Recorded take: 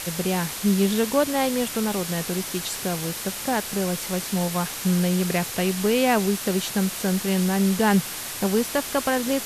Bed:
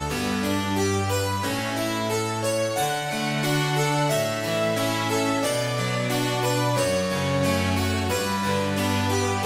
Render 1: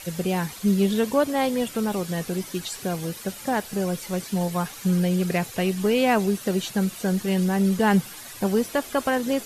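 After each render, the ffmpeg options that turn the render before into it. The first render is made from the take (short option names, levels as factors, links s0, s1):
-af "afftdn=nr=11:nf=-33"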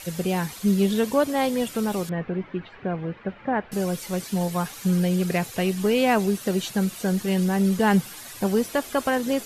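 -filter_complex "[0:a]asettb=1/sr,asplit=3[s0][s1][s2];[s0]atrim=end=2.094[s3];[s1]atrim=start=2.09:end=3.72,asetpts=PTS-STARTPTS,afade=t=in:d=0.004:c=qsin,afade=t=out:st=1.626:d=0.004:c=qsin,lowpass=f=2300:w=0.5412,lowpass=f=2300:w=1.3066[s4];[s2]atrim=start=3.716[s5];[s3][s4]acrossfade=d=0.004:c1=hsin:c2=qsin[s6];[s6][s5]acrossfade=d=0.004:c1=qsin:c2=hsin"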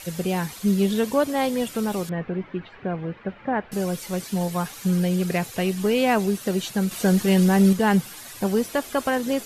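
-filter_complex "[0:a]asettb=1/sr,asplit=3[s0][s1][s2];[s0]atrim=end=6.914[s3];[s1]atrim=start=6.91:end=7.73,asetpts=PTS-STARTPTS,afade=t=in:d=0.004:c=qsin,afade=t=out:st=0.816:d=0.004:c=qsin,acontrast=26[s4];[s2]atrim=start=7.726[s5];[s3][s4]acrossfade=d=0.004:c1=hsin:c2=qsin[s6];[s6][s5]acrossfade=d=0.004:c1=qsin:c2=hsin"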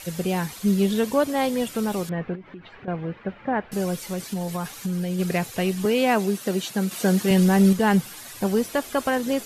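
-filter_complex "[0:a]asettb=1/sr,asplit=3[s0][s1][s2];[s0]atrim=end=2.354[s3];[s1]atrim=start=2.35:end=2.88,asetpts=PTS-STARTPTS,afade=t=in:d=0.004:c=qsin,afade=t=out:st=0.526:d=0.004:c=qsin,acompressor=threshold=0.0158:ratio=6:attack=3.2:release=140:knee=1:detection=peak[s4];[s2]atrim=start=2.876[s5];[s3][s4]acrossfade=d=0.004:c1=hsin:c2=qsin[s6];[s6][s5]acrossfade=d=0.004:c1=qsin:c2=hsin,asplit=3[s7][s8][s9];[s7]afade=t=out:st=3.95:d=0.02[s10];[s8]acompressor=threshold=0.0708:ratio=6:attack=3.2:release=140:knee=1:detection=peak,afade=t=in:st=3.95:d=0.02,afade=t=out:st=5.18:d=0.02[s11];[s9]afade=t=in:st=5.18:d=0.02[s12];[s10][s11][s12]amix=inputs=3:normalize=0,asettb=1/sr,asplit=3[s13][s14][s15];[s13]atrim=end=5.854[s16];[s14]atrim=start=5.85:end=7.31,asetpts=PTS-STARTPTS,afade=t=in:d=0.004:c=qsin,afade=t=out:st=1.456:d=0.004:c=qsin,highpass=150[s17];[s15]atrim=start=7.306[s18];[s16][s17]acrossfade=d=0.004:c1=hsin:c2=qsin[s19];[s19][s18]acrossfade=d=0.004:c1=qsin:c2=hsin"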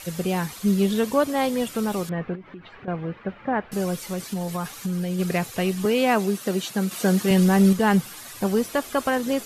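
-af "equalizer=f=1200:t=o:w=0.27:g=3.5"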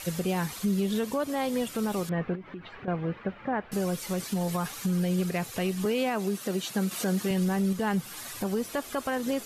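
-af "alimiter=limit=0.106:level=0:latency=1:release=231"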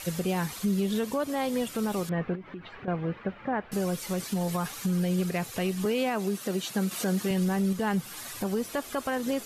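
-af anull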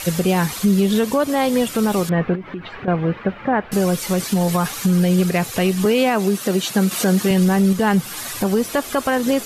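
-af "volume=3.55"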